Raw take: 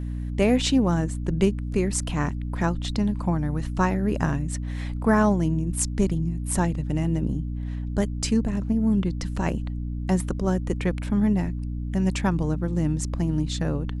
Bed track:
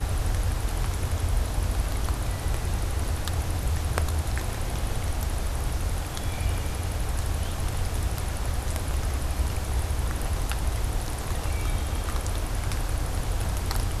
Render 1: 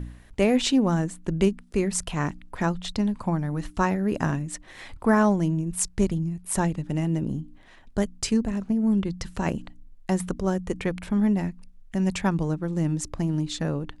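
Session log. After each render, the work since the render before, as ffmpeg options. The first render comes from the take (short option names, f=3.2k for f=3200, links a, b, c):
-af "bandreject=f=60:t=h:w=4,bandreject=f=120:t=h:w=4,bandreject=f=180:t=h:w=4,bandreject=f=240:t=h:w=4,bandreject=f=300:t=h:w=4"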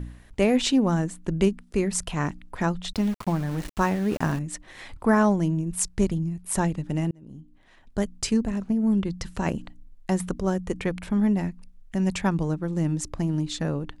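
-filter_complex "[0:a]asettb=1/sr,asplit=3[a][b][c];[a]atrim=end=2.934[d];[b]atrim=start=2.93:end=4.39,asetpts=PTS-STARTPTS,afade=t=in:d=0.004:c=qsin,afade=t=out:st=1.456:d=0.004:c=qsin,aeval=exprs='val(0)*gte(abs(val(0)),0.0188)':c=same[e];[c]atrim=start=4.386[f];[d][e]acrossfade=d=0.004:c1=hsin:c2=qsin[g];[g][f]acrossfade=d=0.004:c1=qsin:c2=hsin,asplit=2[h][i];[h]atrim=end=7.11,asetpts=PTS-STARTPTS,afade=t=out:st=7.106:d=0.004:c=hsin[j];[i]atrim=start=7.11,asetpts=PTS-STARTPTS,afade=t=in:d=1.03[k];[j][k]concat=n=2:v=0:a=1"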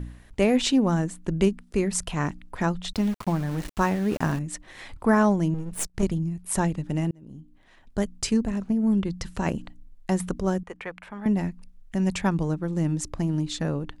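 -filter_complex "[0:a]asettb=1/sr,asplit=3[a][b][c];[a]atrim=end=5.544[d];[b]atrim=start=5.54:end=6.03,asetpts=PTS-STARTPTS,afade=t=in:d=0.004:c=qsin,afade=t=out:st=0.486:d=0.004:c=qsin,aeval=exprs='if(lt(val(0),0),0.251*val(0),val(0))':c=same[e];[c]atrim=start=6.026[f];[d][e]acrossfade=d=0.004:c1=hsin:c2=qsin[g];[g][f]acrossfade=d=0.004:c1=qsin:c2=hsin,asettb=1/sr,asplit=3[h][i][j];[h]atrim=end=10.634[k];[i]atrim=start=10.63:end=11.26,asetpts=PTS-STARTPTS,afade=t=in:d=0.004:c=qsin,afade=t=out:st=0.626:d=0.004:c=qsin,acrossover=split=580 2700:gain=0.141 1 0.2[l][m][n];[l][m][n]amix=inputs=3:normalize=0[o];[j]atrim=start=11.256[p];[k][o]acrossfade=d=0.004:c1=hsin:c2=qsin[q];[q][p]acrossfade=d=0.004:c1=qsin:c2=hsin"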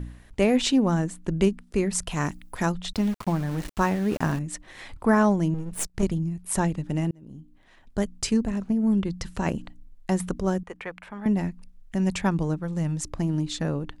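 -filter_complex "[0:a]asettb=1/sr,asplit=3[a][b][c];[a]atrim=end=2.114[d];[b]atrim=start=2.11:end=2.72,asetpts=PTS-STARTPTS,afade=t=in:d=0.004:c=qsin,afade=t=out:st=0.606:d=0.004:c=qsin,aemphasis=mode=production:type=50fm[e];[c]atrim=start=2.716[f];[d][e]acrossfade=d=0.004:c1=hsin:c2=qsin[g];[g][f]acrossfade=d=0.004:c1=qsin:c2=hsin,asettb=1/sr,asplit=3[h][i][j];[h]atrim=end=12.594[k];[i]atrim=start=12.59:end=13.05,asetpts=PTS-STARTPTS,afade=t=in:d=0.004:c=qsin,afade=t=out:st=0.456:d=0.004:c=qsin,equalizer=f=320:t=o:w=0.64:g=-8.5[l];[j]atrim=start=13.046[m];[k][l]acrossfade=d=0.004:c1=hsin:c2=qsin[n];[n][m]acrossfade=d=0.004:c1=qsin:c2=hsin"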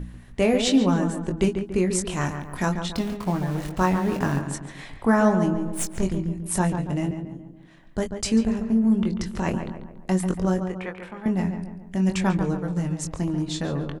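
-filter_complex "[0:a]asplit=2[a][b];[b]adelay=22,volume=-6dB[c];[a][c]amix=inputs=2:normalize=0,asplit=2[d][e];[e]adelay=141,lowpass=f=2.1k:p=1,volume=-7dB,asplit=2[f][g];[g]adelay=141,lowpass=f=2.1k:p=1,volume=0.49,asplit=2[h][i];[i]adelay=141,lowpass=f=2.1k:p=1,volume=0.49,asplit=2[j][k];[k]adelay=141,lowpass=f=2.1k:p=1,volume=0.49,asplit=2[l][m];[m]adelay=141,lowpass=f=2.1k:p=1,volume=0.49,asplit=2[n][o];[o]adelay=141,lowpass=f=2.1k:p=1,volume=0.49[p];[d][f][h][j][l][n][p]amix=inputs=7:normalize=0"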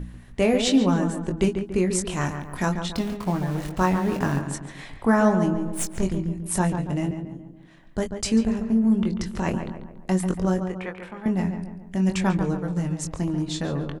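-af anull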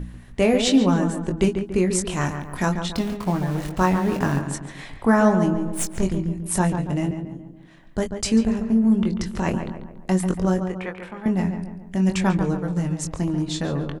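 -af "volume=2dB"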